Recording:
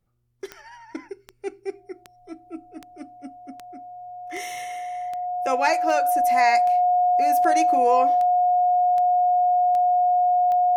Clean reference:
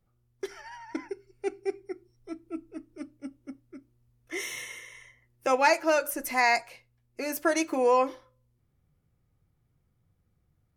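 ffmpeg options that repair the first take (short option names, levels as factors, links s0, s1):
-af "adeclick=t=4,bandreject=f=720:w=30"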